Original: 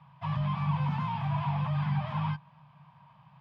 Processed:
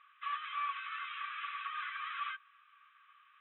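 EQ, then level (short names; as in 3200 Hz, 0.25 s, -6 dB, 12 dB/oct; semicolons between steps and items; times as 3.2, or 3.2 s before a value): brick-wall FIR band-pass 1100–4000 Hz; air absorption 230 m; +6.5 dB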